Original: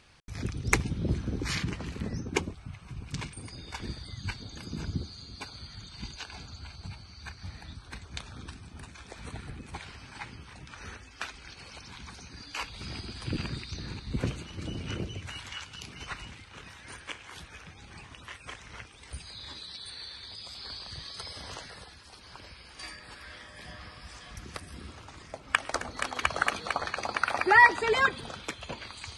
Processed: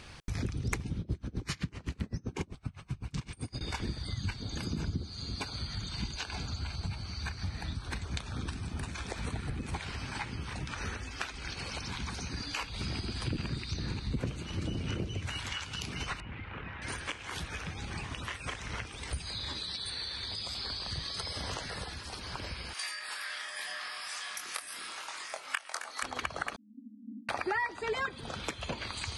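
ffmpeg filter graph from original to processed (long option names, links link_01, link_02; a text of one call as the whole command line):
ffmpeg -i in.wav -filter_complex "[0:a]asettb=1/sr,asplit=3[link_01][link_02][link_03];[link_01]atrim=end=1.004[link_04];[link_02]atrim=start=1:end=3.61,asetpts=PTS-STARTPTS,afade=type=in:duration=0.004:curve=qsin,afade=type=out:start_time=2.606:duration=0.004:curve=qsin,asplit=2[link_05][link_06];[link_06]adelay=43,volume=-14dB[link_07];[link_05][link_07]amix=inputs=2:normalize=0,atrim=end_sample=115101,aeval=exprs='val(0)*pow(10,-30*(0.5-0.5*cos(2*PI*7.8*n/s))/20)':channel_layout=same[link_08];[link_03]atrim=start=3.606[link_09];[link_04][link_08]acrossfade=duration=0.004:curve1=hsin:curve2=qsin[link_10];[link_10][link_09]acrossfade=duration=0.004:curve1=qsin:curve2=hsin,asettb=1/sr,asplit=3[link_11][link_12][link_13];[link_11]atrim=end=16.204[link_14];[link_12]atrim=start=16.2:end=16.82,asetpts=PTS-STARTPTS,afade=type=in:duration=0.004:curve=qsin,afade=type=out:start_time=0.616:duration=0.004:curve=qsin,acompressor=threshold=-47dB:ratio=3:attack=3.2:release=140:knee=1:detection=peak,lowpass=frequency=2600:width=0.5412,lowpass=frequency=2600:width=1.3066[link_15];[link_13]atrim=start=16.816[link_16];[link_14][link_15]acrossfade=duration=0.004:curve1=hsin:curve2=qsin[link_17];[link_17][link_16]acrossfade=duration=0.004:curve1=qsin:curve2=hsin,asettb=1/sr,asplit=3[link_18][link_19][link_20];[link_18]atrim=end=22.734[link_21];[link_19]atrim=start=22.73:end=26.03,asetpts=PTS-STARTPTS,afade=type=in:duration=0.004:curve=qsin,afade=type=out:start_time=3.296:duration=0.004:curve=qsin,highpass=1000,equalizer=frequency=11000:width=1.8:gain=8.5,asplit=2[link_22][link_23];[link_23]adelay=23,volume=-4.5dB[link_24];[link_22][link_24]amix=inputs=2:normalize=0,atrim=end_sample=145530[link_25];[link_20]atrim=start=26.026[link_26];[link_21][link_25]acrossfade=duration=0.004:curve1=hsin:curve2=qsin[link_27];[link_27][link_26]acrossfade=duration=0.004:curve1=qsin:curve2=hsin,asettb=1/sr,asplit=3[link_28][link_29][link_30];[link_28]atrim=end=26.564[link_31];[link_29]atrim=start=26.56:end=27.29,asetpts=PTS-STARTPTS,afade=type=in:duration=0.004:curve=qsin,afade=type=out:start_time=0.726:duration=0.004:curve=qsin,asuperpass=centerf=250:order=20:qfactor=2.8,aecho=1:1:1.6:0.69,atrim=end_sample=32193[link_32];[link_30]atrim=start=27.286[link_33];[link_31][link_32]acrossfade=duration=0.004:curve1=hsin:curve2=qsin[link_34];[link_34][link_33]acrossfade=duration=0.004:curve1=qsin:curve2=hsin,acompressor=threshold=-44dB:ratio=4,lowshelf=frequency=400:gain=3,volume=8.5dB" out.wav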